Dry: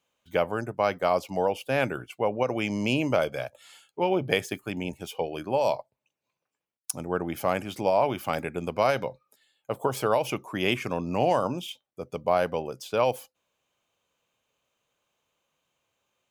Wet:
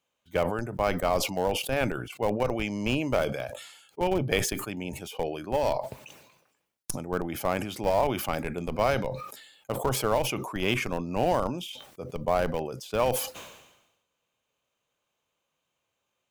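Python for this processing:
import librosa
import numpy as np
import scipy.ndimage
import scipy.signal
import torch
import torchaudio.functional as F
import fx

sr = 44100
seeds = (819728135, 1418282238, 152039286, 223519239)

p1 = fx.schmitt(x, sr, flips_db=-19.5)
p2 = x + F.gain(torch.from_numpy(p1), -3.0).numpy()
p3 = fx.sustainer(p2, sr, db_per_s=58.0)
y = F.gain(torch.from_numpy(p3), -3.0).numpy()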